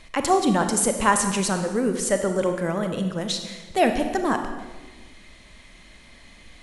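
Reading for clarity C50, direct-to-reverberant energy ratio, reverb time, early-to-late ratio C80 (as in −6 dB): 7.5 dB, 6.0 dB, 1.3 s, 9.0 dB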